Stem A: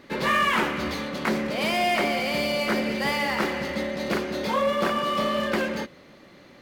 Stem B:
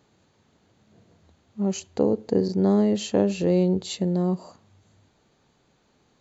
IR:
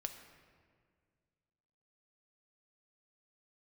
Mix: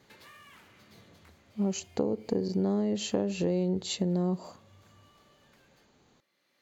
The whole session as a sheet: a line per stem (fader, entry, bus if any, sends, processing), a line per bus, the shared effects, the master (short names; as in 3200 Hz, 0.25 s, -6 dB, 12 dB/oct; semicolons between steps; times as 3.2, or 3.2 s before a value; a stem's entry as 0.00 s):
-19.0 dB, 0.00 s, send -12 dB, compressor 6:1, threshold -34 dBFS, peak gain reduction 14 dB; tilt +3.5 dB/oct; auto duck -18 dB, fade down 1.85 s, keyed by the second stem
-0.5 dB, 0.00 s, no send, dry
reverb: on, RT60 1.9 s, pre-delay 4 ms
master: compressor 6:1, threshold -25 dBFS, peak gain reduction 9 dB